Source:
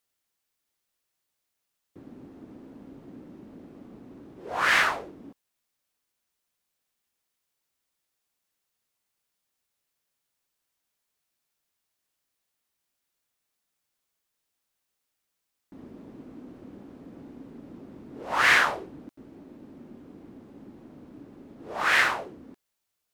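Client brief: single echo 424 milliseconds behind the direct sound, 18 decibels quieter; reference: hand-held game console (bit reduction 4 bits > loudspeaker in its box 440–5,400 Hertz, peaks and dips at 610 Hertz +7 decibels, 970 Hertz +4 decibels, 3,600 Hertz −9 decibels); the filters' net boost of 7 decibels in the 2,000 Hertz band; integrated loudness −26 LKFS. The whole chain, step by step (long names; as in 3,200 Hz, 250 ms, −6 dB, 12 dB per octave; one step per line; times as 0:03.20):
parametric band 2,000 Hz +8.5 dB
single-tap delay 424 ms −18 dB
bit reduction 4 bits
loudspeaker in its box 440–5,400 Hz, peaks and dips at 610 Hz +7 dB, 970 Hz +4 dB, 3,600 Hz −9 dB
level −10 dB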